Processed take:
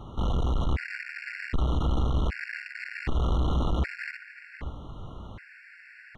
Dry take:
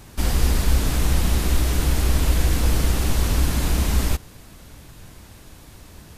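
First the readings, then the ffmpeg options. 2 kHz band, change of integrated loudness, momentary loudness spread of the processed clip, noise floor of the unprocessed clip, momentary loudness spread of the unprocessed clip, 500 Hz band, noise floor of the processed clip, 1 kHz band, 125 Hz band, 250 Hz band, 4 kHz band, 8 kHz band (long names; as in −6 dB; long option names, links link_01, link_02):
−2.5 dB, −8.5 dB, 18 LU, −45 dBFS, 2 LU, −6.0 dB, −51 dBFS, −4.5 dB, −8.0 dB, −7.0 dB, −13.0 dB, −28.0 dB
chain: -filter_complex "[0:a]asplit=2[link_01][link_02];[link_02]asoftclip=type=hard:threshold=-22.5dB,volume=-3dB[link_03];[link_01][link_03]amix=inputs=2:normalize=0,lowpass=frequency=2000:width_type=q:width=2.2,asoftclip=type=tanh:threshold=-20.5dB,asplit=2[link_04][link_05];[link_05]adelay=530.6,volume=-9dB,highshelf=frequency=4000:gain=-11.9[link_06];[link_04][link_06]amix=inputs=2:normalize=0,afftfilt=real='re*gt(sin(2*PI*0.65*pts/sr)*(1-2*mod(floor(b*sr/1024/1400),2)),0)':imag='im*gt(sin(2*PI*0.65*pts/sr)*(1-2*mod(floor(b*sr/1024/1400),2)),0)':win_size=1024:overlap=0.75,volume=-2dB"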